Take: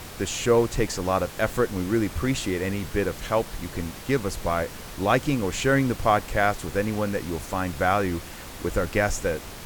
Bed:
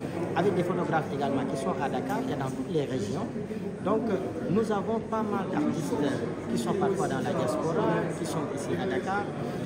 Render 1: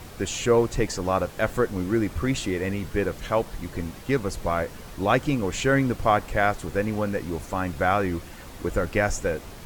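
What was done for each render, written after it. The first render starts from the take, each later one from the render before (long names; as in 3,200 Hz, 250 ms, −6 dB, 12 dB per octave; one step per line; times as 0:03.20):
broadband denoise 6 dB, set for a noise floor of −40 dBFS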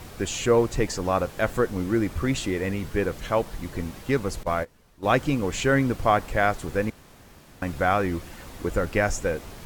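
0:04.43–0:05.13: noise gate −26 dBFS, range −18 dB
0:06.90–0:07.62: fill with room tone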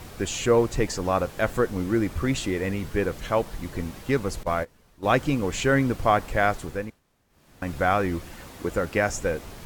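0:06.56–0:07.73: duck −18.5 dB, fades 0.44 s
0:08.47–0:09.15: high-pass filter 100 Hz 6 dB per octave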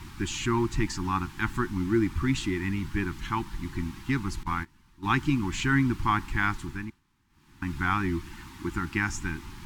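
elliptic band-stop filter 350–870 Hz, stop band 40 dB
high-shelf EQ 6,800 Hz −9.5 dB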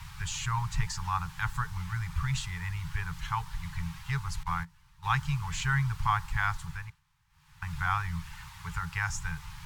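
Chebyshev band-stop filter 170–440 Hz, order 5
dynamic equaliser 2,400 Hz, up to −5 dB, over −44 dBFS, Q 1.3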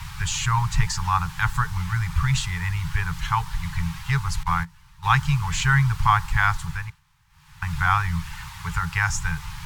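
level +9 dB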